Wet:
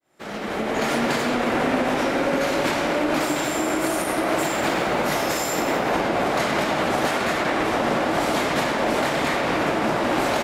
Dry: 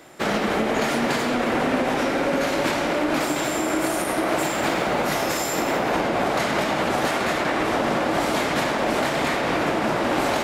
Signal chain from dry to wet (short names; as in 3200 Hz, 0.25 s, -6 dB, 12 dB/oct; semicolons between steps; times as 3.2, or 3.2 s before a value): opening faded in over 0.92 s; speakerphone echo 0.12 s, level -9 dB